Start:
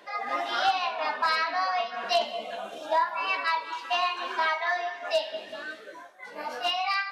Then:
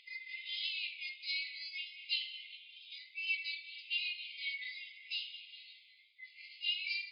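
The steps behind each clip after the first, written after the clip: FFT band-pass 2000–5100 Hz; upward compressor, threshold -54 dBFS; gain -5 dB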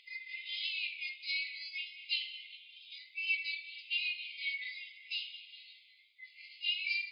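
dynamic EQ 2400 Hz, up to +5 dB, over -52 dBFS, Q 4.9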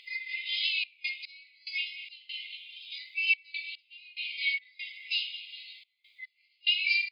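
step gate "xxxx.x..xx.x" 72 bpm -24 dB; gain +8 dB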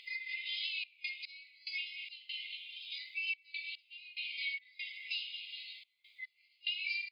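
compressor 2.5:1, threshold -38 dBFS, peak gain reduction 12 dB; gain -1 dB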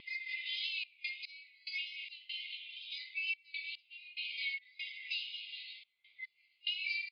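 wow and flutter 21 cents; downsampling 11025 Hz; low-pass opened by the level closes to 2800 Hz, open at -36 dBFS

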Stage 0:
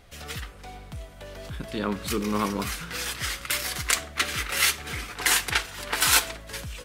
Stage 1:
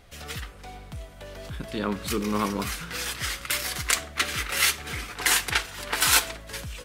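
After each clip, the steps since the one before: nothing audible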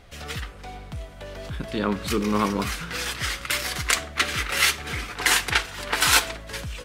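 high shelf 8200 Hz -8 dB; gain +3.5 dB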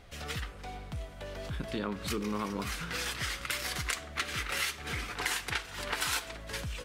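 compressor 4:1, threshold -27 dBFS, peak gain reduction 12 dB; gain -4 dB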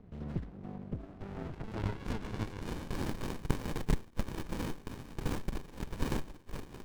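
band-pass sweep 200 Hz -> 7300 Hz, 0.78–3.32; running maximum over 65 samples; gain +12.5 dB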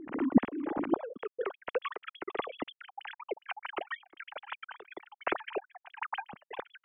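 sine-wave speech

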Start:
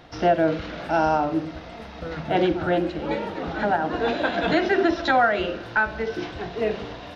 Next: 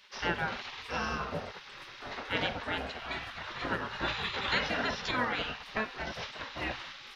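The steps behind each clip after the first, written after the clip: spectral gate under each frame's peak -15 dB weak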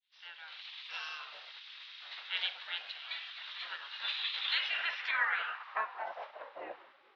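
opening faded in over 1.01 s; three-band isolator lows -20 dB, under 510 Hz, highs -18 dB, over 4700 Hz; band-pass sweep 3700 Hz -> 370 Hz, 4.49–6.88; gain +5.5 dB

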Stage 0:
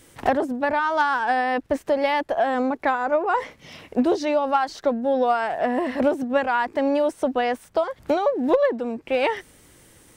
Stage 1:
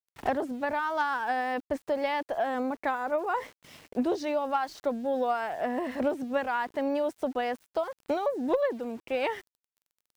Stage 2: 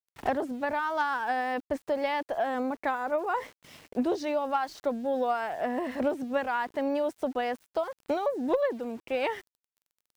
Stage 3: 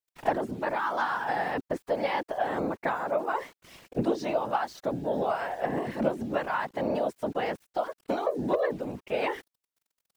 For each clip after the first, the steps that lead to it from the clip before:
sample gate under -41.5 dBFS; gain -7.5 dB
nothing audible
whisperiser

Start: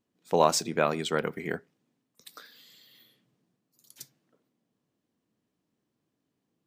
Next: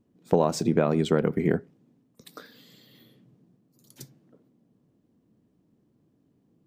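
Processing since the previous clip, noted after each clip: tilt shelf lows +9 dB, about 690 Hz; compressor 6:1, threshold -25 dBFS, peak gain reduction 10.5 dB; gain +7.5 dB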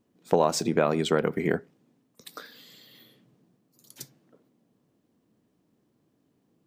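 low shelf 410 Hz -11 dB; gain +4.5 dB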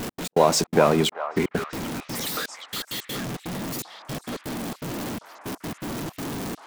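zero-crossing step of -29 dBFS; step gate "x.x.xxx.xxxx..." 165 bpm -60 dB; delay with a stepping band-pass 0.391 s, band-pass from 980 Hz, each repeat 0.7 oct, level -6 dB; gain +4 dB

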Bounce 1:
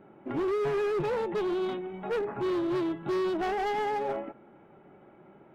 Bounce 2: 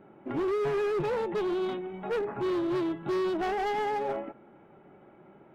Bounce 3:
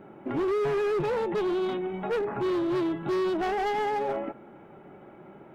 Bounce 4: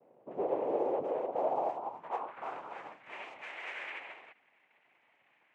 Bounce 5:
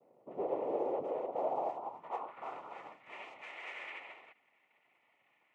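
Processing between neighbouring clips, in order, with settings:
nothing audible
limiter -30 dBFS, peak gain reduction 5 dB; gain +6 dB
noise vocoder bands 4; band-pass sweep 480 Hz -> 2100 Hz, 1.04–3.17; upward expander 1.5:1, over -42 dBFS
Butterworth band-stop 1600 Hz, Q 6.9; gain -3 dB

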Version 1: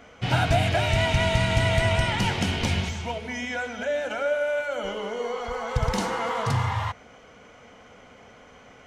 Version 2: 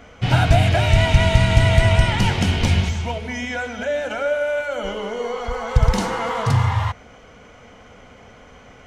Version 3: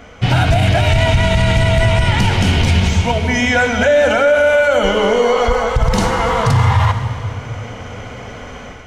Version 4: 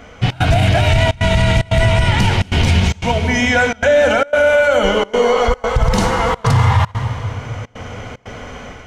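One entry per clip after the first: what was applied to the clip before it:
low shelf 99 Hz +10.5 dB; gain +3.5 dB
AGC gain up to 8 dB; reverb RT60 2.7 s, pre-delay 50 ms, DRR 10.5 dB; maximiser +9 dB; gain -3.5 dB
step gate "xxx.xxxxxxx.x" 149 bpm -24 dB

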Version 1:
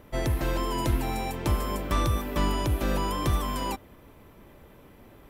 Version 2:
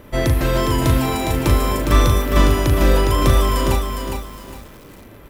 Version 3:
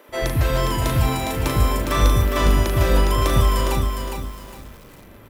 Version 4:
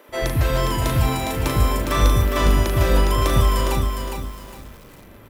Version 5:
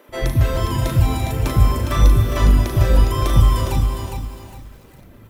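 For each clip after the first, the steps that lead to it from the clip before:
bell 800 Hz -4 dB 0.43 oct; doubler 38 ms -6 dB; lo-fi delay 0.409 s, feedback 35%, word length 8-bit, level -5.5 dB; gain +9 dB
bands offset in time highs, lows 90 ms, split 320 Hz; gain -2 dB
nothing audible
reverb removal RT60 1.3 s; low shelf 260 Hz +7 dB; non-linear reverb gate 0.42 s flat, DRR 4.5 dB; gain -2 dB

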